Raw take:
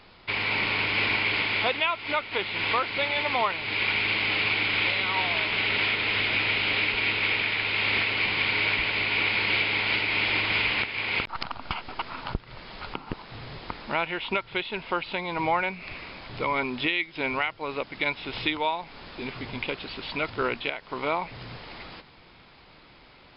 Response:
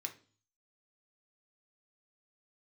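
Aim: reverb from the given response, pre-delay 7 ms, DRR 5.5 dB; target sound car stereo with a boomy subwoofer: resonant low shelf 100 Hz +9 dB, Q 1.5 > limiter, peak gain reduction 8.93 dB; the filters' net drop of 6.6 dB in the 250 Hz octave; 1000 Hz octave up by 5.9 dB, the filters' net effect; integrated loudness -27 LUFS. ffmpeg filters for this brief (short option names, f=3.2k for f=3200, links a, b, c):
-filter_complex "[0:a]equalizer=f=250:t=o:g=-8.5,equalizer=f=1k:t=o:g=7.5,asplit=2[a][b];[1:a]atrim=start_sample=2205,adelay=7[c];[b][c]afir=irnorm=-1:irlink=0,volume=-4dB[d];[a][d]amix=inputs=2:normalize=0,lowshelf=f=100:t=q:w=1.5:g=9,volume=-1dB,alimiter=limit=-18dB:level=0:latency=1"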